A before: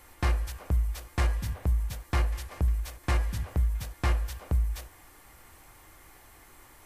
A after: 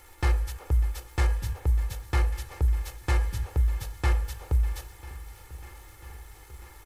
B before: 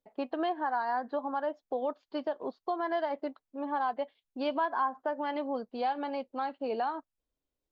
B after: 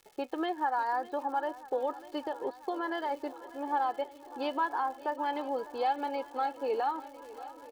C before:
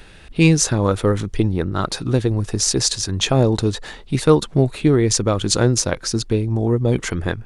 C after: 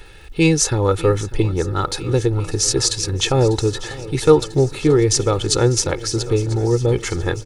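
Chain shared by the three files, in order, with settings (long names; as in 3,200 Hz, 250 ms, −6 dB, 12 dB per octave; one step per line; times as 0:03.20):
surface crackle 220 per second −46 dBFS
comb filter 2.3 ms, depth 66%
feedback echo with a long and a short gap by turns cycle 994 ms, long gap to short 1.5 to 1, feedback 65%, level −18 dB
level −1 dB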